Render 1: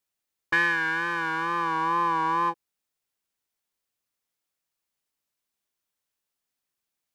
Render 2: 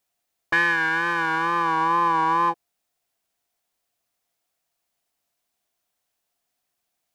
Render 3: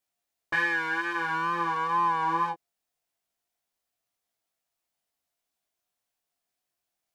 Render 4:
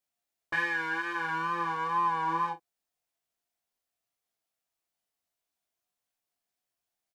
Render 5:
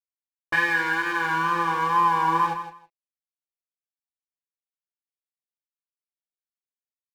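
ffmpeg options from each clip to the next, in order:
-filter_complex "[0:a]asplit=2[a][b];[b]alimiter=limit=-22.5dB:level=0:latency=1,volume=-1dB[c];[a][c]amix=inputs=2:normalize=0,equalizer=f=700:t=o:w=0.25:g=12"
-af "flanger=delay=16.5:depth=4.4:speed=0.51,volume=-3dB"
-filter_complex "[0:a]asplit=2[a][b];[b]adelay=37,volume=-11dB[c];[a][c]amix=inputs=2:normalize=0,volume=-3.5dB"
-af "aeval=exprs='sgn(val(0))*max(abs(val(0))-0.00282,0)':c=same,aecho=1:1:161|322:0.316|0.0538,volume=8dB"

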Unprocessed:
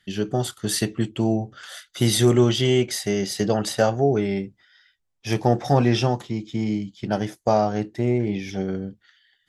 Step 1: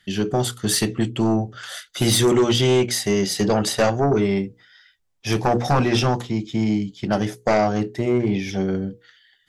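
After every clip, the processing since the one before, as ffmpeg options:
-af "bandreject=f=60:t=h:w=6,bandreject=f=120:t=h:w=6,bandreject=f=180:t=h:w=6,bandreject=f=240:t=h:w=6,bandreject=f=300:t=h:w=6,bandreject=f=360:t=h:w=6,bandreject=f=420:t=h:w=6,bandreject=f=480:t=h:w=6,aeval=exprs='0.501*sin(PI/2*2.24*val(0)/0.501)':c=same,volume=-6dB"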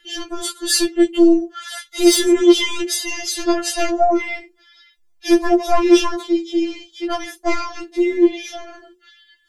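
-af "afftfilt=real='re*4*eq(mod(b,16),0)':imag='im*4*eq(mod(b,16),0)':win_size=2048:overlap=0.75,volume=5.5dB"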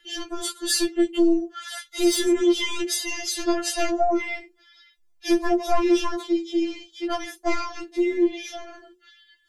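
-filter_complex "[0:a]acrossover=split=230[a][b];[b]acompressor=threshold=-14dB:ratio=6[c];[a][c]amix=inputs=2:normalize=0,volume=-4dB"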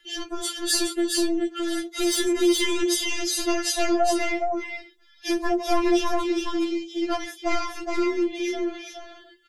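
-filter_complex "[0:a]acrossover=split=660[a][b];[a]alimiter=limit=-18.5dB:level=0:latency=1[c];[c][b]amix=inputs=2:normalize=0,aecho=1:1:417:0.631"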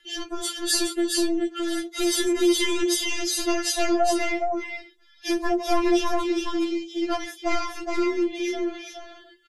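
-af "aresample=32000,aresample=44100"

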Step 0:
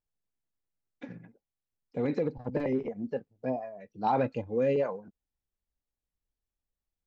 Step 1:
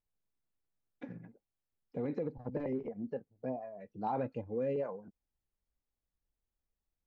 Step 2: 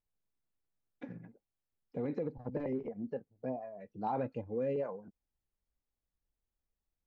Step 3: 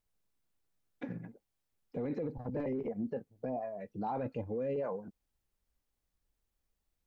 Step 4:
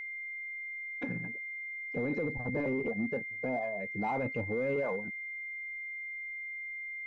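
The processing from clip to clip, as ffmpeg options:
-af "highshelf=f=2.4k:g=-12,acompressor=threshold=-47dB:ratio=1.5,volume=1dB"
-af anull
-af "alimiter=level_in=10.5dB:limit=-24dB:level=0:latency=1:release=11,volume=-10.5dB,volume=5.5dB"
-filter_complex "[0:a]asplit=2[a][b];[b]volume=35.5dB,asoftclip=hard,volume=-35.5dB,volume=-5.5dB[c];[a][c]amix=inputs=2:normalize=0,aeval=exprs='val(0)+0.0126*sin(2*PI*2100*n/s)':c=same"

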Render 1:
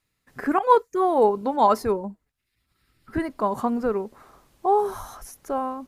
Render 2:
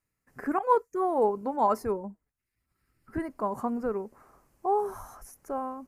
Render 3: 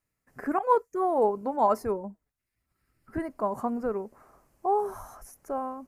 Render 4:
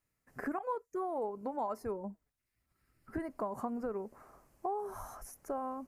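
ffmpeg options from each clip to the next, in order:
-af "equalizer=f=3.6k:t=o:w=0.69:g=-14.5,volume=-6dB"
-af "equalizer=f=640:t=o:w=0.38:g=4"
-af "acompressor=threshold=-33dB:ratio=6,volume=-1dB"

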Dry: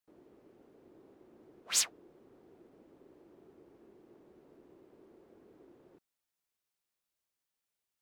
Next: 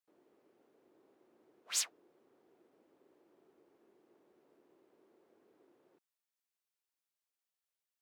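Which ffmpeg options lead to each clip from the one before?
-af "highpass=f=510:p=1,volume=-5dB"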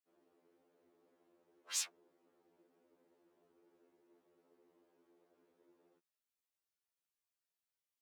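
-af "afftfilt=real='re*2*eq(mod(b,4),0)':imag='im*2*eq(mod(b,4),0)':win_size=2048:overlap=0.75,volume=-1.5dB"

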